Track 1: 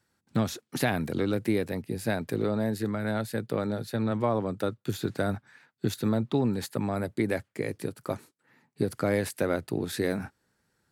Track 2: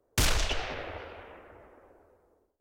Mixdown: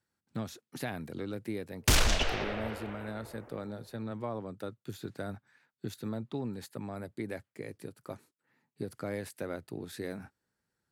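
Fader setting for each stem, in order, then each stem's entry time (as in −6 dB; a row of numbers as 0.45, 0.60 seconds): −10.5, +1.5 decibels; 0.00, 1.70 seconds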